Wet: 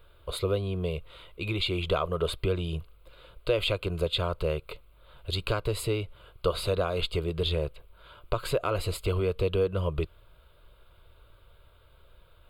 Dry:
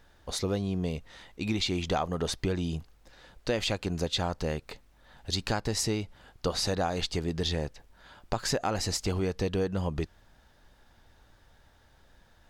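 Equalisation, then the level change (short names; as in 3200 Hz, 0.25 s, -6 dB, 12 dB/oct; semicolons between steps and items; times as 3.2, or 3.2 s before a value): bell 6400 Hz -9 dB 0.7 oct; fixed phaser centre 1200 Hz, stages 8; +5.0 dB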